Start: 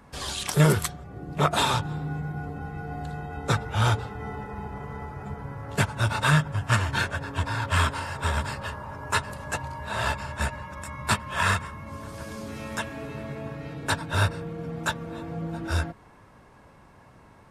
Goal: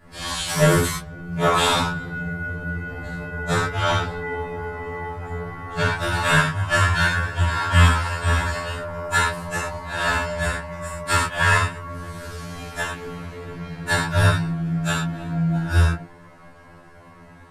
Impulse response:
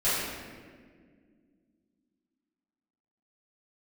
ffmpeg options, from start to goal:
-filter_complex "[0:a]asettb=1/sr,asplit=3[a][b][c];[a]atrim=end=3.604[d];[b]atrim=start=3.6:end=6.02,asetpts=PTS-STARTPTS,afade=t=in:d=0.004:c=qsin,afade=t=out:st=2.416:d=0.004:c=qsin,acrossover=split=5800[e][f];[f]acompressor=threshold=-52dB:ratio=4:attack=1:release=60[g];[e][g]amix=inputs=2:normalize=0[h];[c]atrim=start=6.016[i];[d][h]acrossfade=d=0.004:c1=hsin:c2=qsin[j];[j][i]acrossfade=d=0.004:c1=qsin:c2=hsin[k];[1:a]atrim=start_sample=2205,atrim=end_sample=6174[l];[k][l]afir=irnorm=-1:irlink=0,afftfilt=real='re*2*eq(mod(b,4),0)':imag='im*2*eq(mod(b,4),0)':win_size=2048:overlap=0.75,volume=-2.5dB"

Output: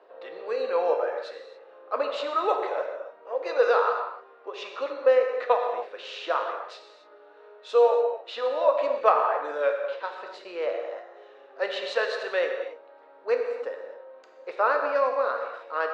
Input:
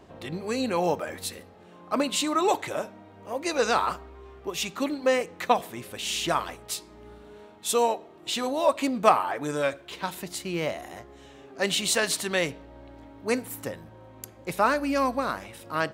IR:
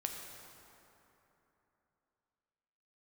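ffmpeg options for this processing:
-filter_complex "[0:a]highpass=f=480:w=0.5412,highpass=f=480:w=1.3066,equalizer=f=490:t=q:w=4:g=10,equalizer=f=780:t=q:w=4:g=-3,equalizer=f=1.4k:t=q:w=4:g=3,equalizer=f=2.2k:t=q:w=4:g=-7,equalizer=f=3.2k:t=q:w=4:g=-8,lowpass=f=3.6k:w=0.5412,lowpass=f=3.6k:w=1.3066[a];[1:a]atrim=start_sample=2205,afade=t=out:st=0.34:d=0.01,atrim=end_sample=15435[b];[a][b]afir=irnorm=-1:irlink=0"

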